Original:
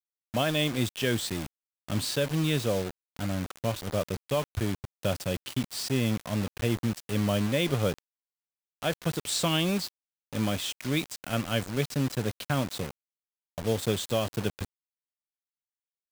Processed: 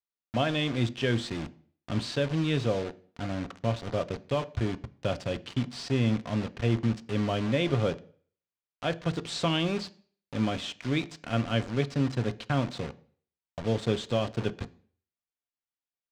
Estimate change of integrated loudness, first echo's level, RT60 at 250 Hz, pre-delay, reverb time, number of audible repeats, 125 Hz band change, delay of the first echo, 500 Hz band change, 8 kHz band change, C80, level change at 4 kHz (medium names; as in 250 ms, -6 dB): -0.5 dB, no echo, 0.50 s, 3 ms, 0.50 s, no echo, +0.5 dB, no echo, 0.0 dB, -10.5 dB, 24.5 dB, -3.0 dB